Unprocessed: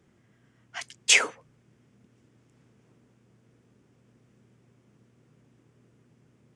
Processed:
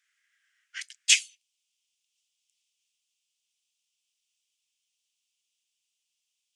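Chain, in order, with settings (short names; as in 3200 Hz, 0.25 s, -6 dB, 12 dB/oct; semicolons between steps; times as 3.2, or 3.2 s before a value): steep high-pass 1500 Hz 48 dB/oct, from 1.14 s 2800 Hz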